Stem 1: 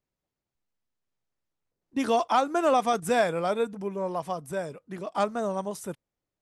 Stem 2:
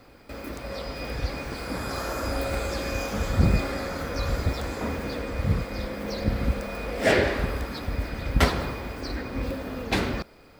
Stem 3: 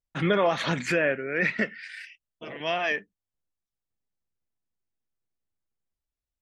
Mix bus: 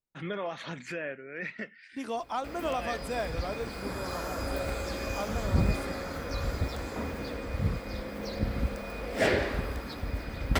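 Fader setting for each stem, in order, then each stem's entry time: −10.0, −5.0, −12.0 decibels; 0.00, 2.15, 0.00 seconds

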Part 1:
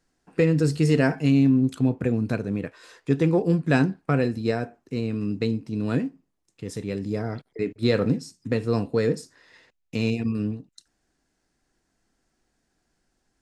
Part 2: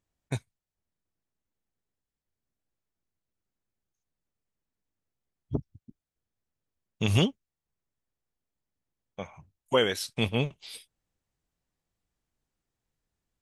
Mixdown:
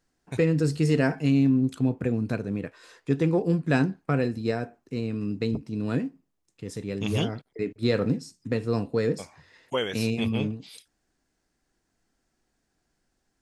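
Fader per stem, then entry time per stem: −2.5, −4.0 decibels; 0.00, 0.00 seconds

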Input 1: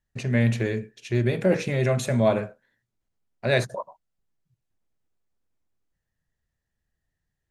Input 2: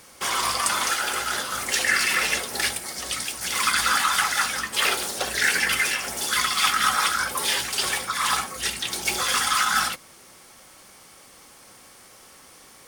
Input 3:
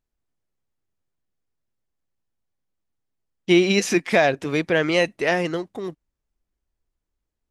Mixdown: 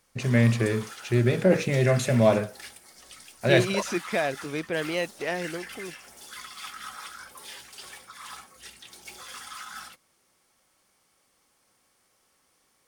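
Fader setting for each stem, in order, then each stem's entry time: +1.0, −19.0, −9.0 decibels; 0.00, 0.00, 0.00 seconds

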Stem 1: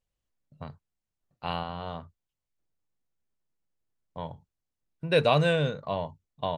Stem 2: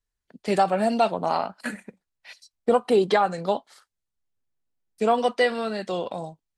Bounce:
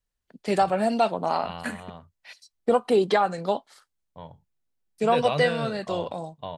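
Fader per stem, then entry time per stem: −5.5, −1.0 decibels; 0.00, 0.00 seconds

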